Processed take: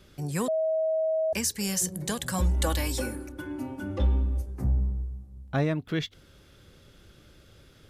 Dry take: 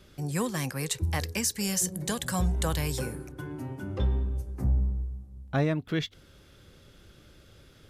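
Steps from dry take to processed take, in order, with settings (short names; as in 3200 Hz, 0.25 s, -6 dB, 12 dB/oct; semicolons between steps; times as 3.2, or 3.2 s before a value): 0.48–1.33 bleep 638 Hz -23 dBFS; 2.38–4.46 comb 3.5 ms, depth 86%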